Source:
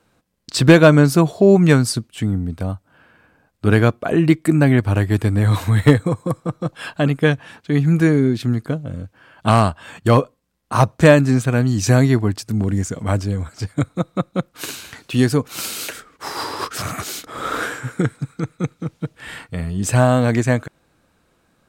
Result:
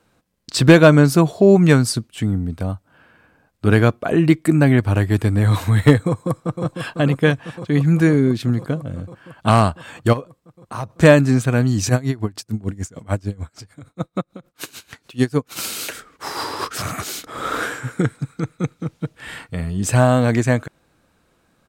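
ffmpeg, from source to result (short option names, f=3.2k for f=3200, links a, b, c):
-filter_complex "[0:a]asplit=2[a][b];[b]afade=t=in:st=6.07:d=0.01,afade=t=out:st=6.64:d=0.01,aecho=0:1:500|1000|1500|2000|2500|3000|3500|4000|4500|5000|5500|6000:0.421697|0.316272|0.237204|0.177903|0.133427|0.100071|0.0750529|0.0562897|0.0422173|0.0316629|0.0237472|0.0178104[c];[a][c]amix=inputs=2:normalize=0,asplit=3[d][e][f];[d]afade=t=out:st=10.12:d=0.02[g];[e]acompressor=threshold=-33dB:ratio=2:attack=3.2:release=140:knee=1:detection=peak,afade=t=in:st=10.12:d=0.02,afade=t=out:st=10.89:d=0.02[h];[f]afade=t=in:st=10.89:d=0.02[i];[g][h][i]amix=inputs=3:normalize=0,asplit=3[j][k][l];[j]afade=t=out:st=11.88:d=0.02[m];[k]aeval=exprs='val(0)*pow(10,-23*(0.5-0.5*cos(2*PI*6.7*n/s))/20)':c=same,afade=t=in:st=11.88:d=0.02,afade=t=out:st=15.55:d=0.02[n];[l]afade=t=in:st=15.55:d=0.02[o];[m][n][o]amix=inputs=3:normalize=0"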